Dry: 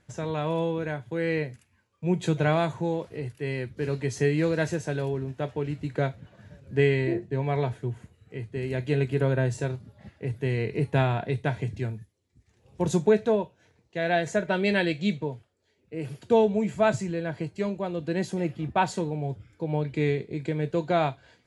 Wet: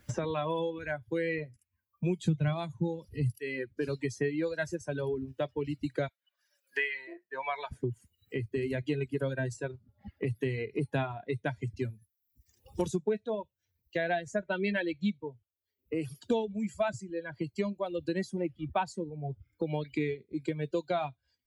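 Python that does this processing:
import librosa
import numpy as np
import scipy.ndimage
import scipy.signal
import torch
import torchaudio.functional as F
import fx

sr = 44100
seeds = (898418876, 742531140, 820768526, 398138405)

y = fx.bass_treble(x, sr, bass_db=15, treble_db=2, at=(2.24, 3.39))
y = fx.highpass(y, sr, hz=980.0, slope=12, at=(6.08, 7.72))
y = fx.bin_expand(y, sr, power=1.5)
y = fx.dereverb_blind(y, sr, rt60_s=1.4)
y = fx.band_squash(y, sr, depth_pct=100)
y = y * librosa.db_to_amplitude(-1.0)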